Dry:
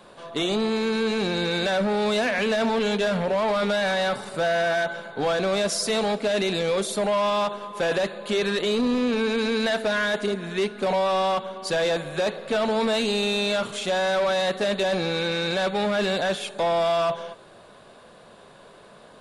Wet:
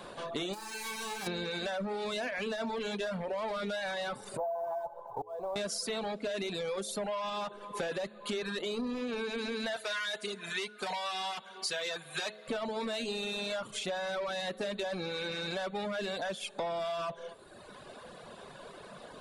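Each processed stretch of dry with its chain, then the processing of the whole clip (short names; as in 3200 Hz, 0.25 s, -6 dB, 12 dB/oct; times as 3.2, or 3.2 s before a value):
0.53–1.26 spectral whitening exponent 0.3 + bell 800 Hz +8.5 dB 0.62 oct + resonator 86 Hz, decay 0.7 s, mix 90%
4.37–5.56 EQ curve 110 Hz 0 dB, 200 Hz -20 dB, 960 Hz +9 dB, 1400 Hz -19 dB, 2200 Hz -27 dB, 4200 Hz -28 dB + auto swell 0.511 s + companded quantiser 8-bit
9.76–12.48 tilt shelf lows -9 dB, about 770 Hz + notch comb 280 Hz
whole clip: reverb removal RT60 1.1 s; de-hum 106.7 Hz, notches 6; compressor 4:1, threshold -39 dBFS; gain +3 dB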